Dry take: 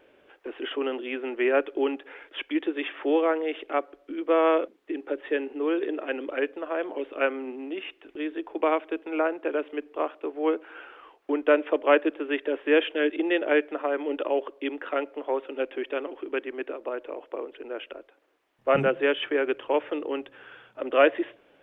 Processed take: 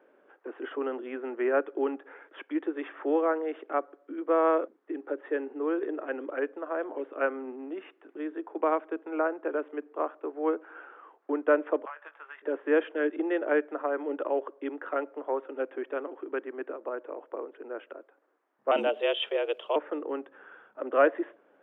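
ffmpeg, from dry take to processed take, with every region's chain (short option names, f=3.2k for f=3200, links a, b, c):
-filter_complex "[0:a]asettb=1/sr,asplit=3[a][b][c];[a]atrim=end=11.854[d];[b]atrim=start=11.85:end=12.42,asetpts=PTS-STARTPTS,afade=t=in:d=0.004:c=qsin,afade=t=out:st=0.566:d=0.004:c=qsin,highpass=f=860:w=0.5412,highpass=f=860:w=1.3066,acompressor=threshold=-34dB:ratio=16:attack=3.2:release=140:knee=1:detection=peak,asplit=2[e][f];[f]adelay=20,volume=-9.5dB[g];[e][g]amix=inputs=2:normalize=0,atrim=end_sample=25137[h];[c]atrim=start=12.416[i];[d][h]acrossfade=d=0.004:c1=hsin:c2=qsin[j];[j][i]acrossfade=d=0.004:c1=qsin:c2=hsin,asettb=1/sr,asplit=3[k][l][m];[k]atrim=end=18.714[n];[l]atrim=start=18.71:end=19.76,asetpts=PTS-STARTPTS,afade=t=in:d=0.004:c=qsin,afade=t=out:st=1.046:d=0.004:c=qsin,highpass=150,highshelf=f=2.2k:t=q:w=3:g=11,afreqshift=83[o];[m]atrim=start=19.756[p];[n][o]acrossfade=d=0.004:c1=hsin:c2=qsin[q];[q][p]acrossfade=d=0.004:c1=qsin:c2=hsin,highpass=f=200:w=0.5412,highpass=f=200:w=1.3066,highshelf=f=2k:t=q:w=1.5:g=-10.5,volume=-3.5dB"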